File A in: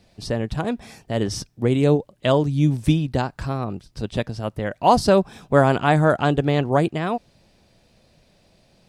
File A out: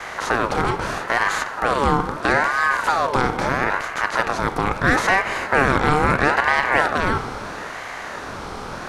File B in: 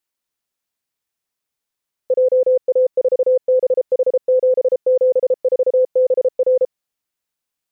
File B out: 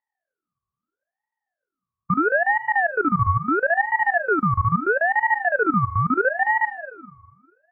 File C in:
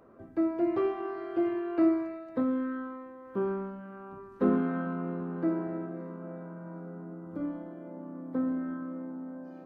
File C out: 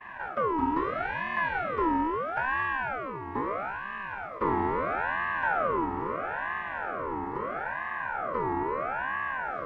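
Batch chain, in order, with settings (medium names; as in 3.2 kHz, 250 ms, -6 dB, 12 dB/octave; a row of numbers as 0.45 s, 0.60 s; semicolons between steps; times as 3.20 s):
spectral levelling over time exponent 0.4; expander -30 dBFS; in parallel at -9 dB: saturation -8.5 dBFS; on the sum: spring tank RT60 1.7 s, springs 40/50 ms, chirp 35 ms, DRR 8.5 dB; ring modulator with a swept carrier 1 kHz, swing 40%, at 0.76 Hz; trim -4.5 dB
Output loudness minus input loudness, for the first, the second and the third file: +1.5 LU, -3.5 LU, +2.5 LU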